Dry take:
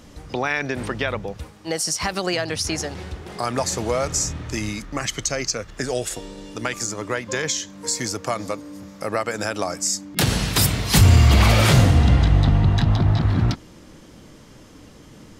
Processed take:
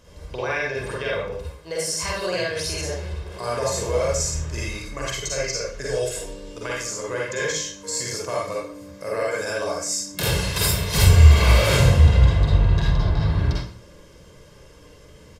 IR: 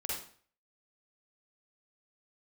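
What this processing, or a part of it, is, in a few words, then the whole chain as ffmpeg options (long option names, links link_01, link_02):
microphone above a desk: -filter_complex "[0:a]aecho=1:1:1.9:0.59[link_01];[1:a]atrim=start_sample=2205[link_02];[link_01][link_02]afir=irnorm=-1:irlink=0,volume=-5dB"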